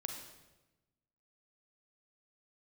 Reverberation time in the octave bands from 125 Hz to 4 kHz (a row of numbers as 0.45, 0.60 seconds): 1.5, 1.4, 1.1, 1.0, 0.95, 0.90 seconds